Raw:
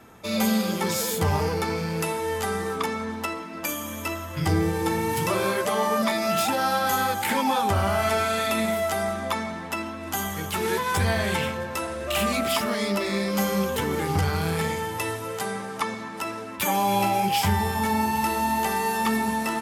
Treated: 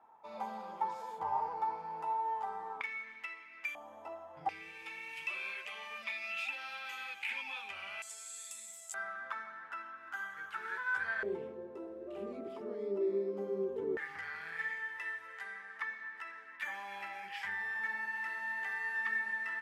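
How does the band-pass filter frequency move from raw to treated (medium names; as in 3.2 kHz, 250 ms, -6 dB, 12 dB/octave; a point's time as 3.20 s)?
band-pass filter, Q 8.2
890 Hz
from 2.81 s 2.2 kHz
from 3.75 s 770 Hz
from 4.49 s 2.5 kHz
from 8.02 s 7.6 kHz
from 8.94 s 1.5 kHz
from 11.23 s 390 Hz
from 13.97 s 1.8 kHz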